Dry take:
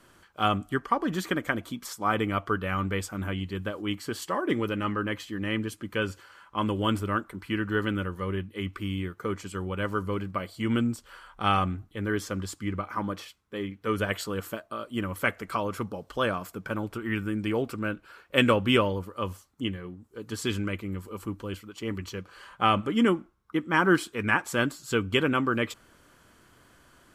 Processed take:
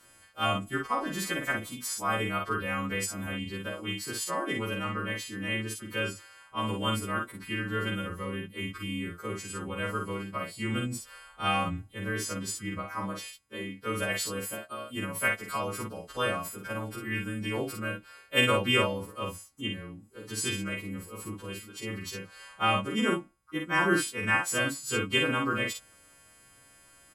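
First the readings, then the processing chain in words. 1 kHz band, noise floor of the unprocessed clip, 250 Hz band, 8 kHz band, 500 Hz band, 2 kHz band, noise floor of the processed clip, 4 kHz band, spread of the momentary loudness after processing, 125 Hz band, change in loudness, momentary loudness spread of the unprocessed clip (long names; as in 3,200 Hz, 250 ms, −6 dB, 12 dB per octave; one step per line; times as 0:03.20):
−2.5 dB, −59 dBFS, −5.0 dB, +7.0 dB, −4.0 dB, 0.0 dB, −58 dBFS, +1.0 dB, 12 LU, −3.5 dB, −2.0 dB, 12 LU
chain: every partial snapped to a pitch grid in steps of 2 semitones
double-tracking delay 47 ms −4 dB
level −4.5 dB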